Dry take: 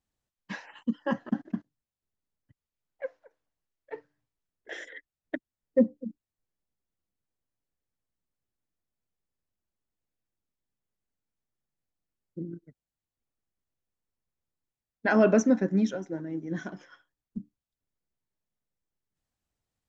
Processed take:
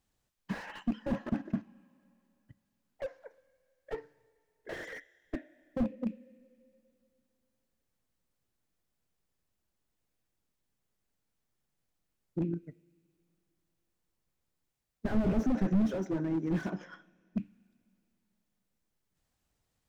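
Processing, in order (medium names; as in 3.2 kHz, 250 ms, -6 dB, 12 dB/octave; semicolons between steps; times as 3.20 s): rattle on loud lows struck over -34 dBFS, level -32 dBFS; 16.70–17.37 s: treble shelf 2.2 kHz -8.5 dB; in parallel at -3 dB: compression, threshold -37 dBFS, peak gain reduction 19 dB; on the sum: two-slope reverb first 0.35 s, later 2.7 s, from -18 dB, DRR 17.5 dB; slew-rate limiter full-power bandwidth 11 Hz; trim +1.5 dB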